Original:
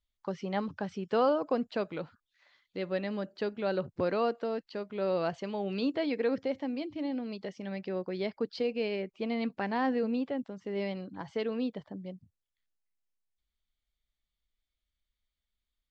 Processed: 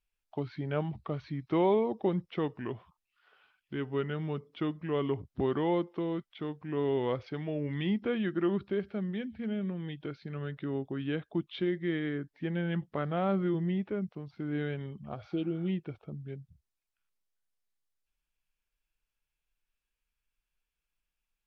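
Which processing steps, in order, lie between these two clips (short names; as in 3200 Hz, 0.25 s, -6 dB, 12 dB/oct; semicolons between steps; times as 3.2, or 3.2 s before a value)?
spectral repair 11.31–11.59, 1000–3100 Hz before; speed mistake 45 rpm record played at 33 rpm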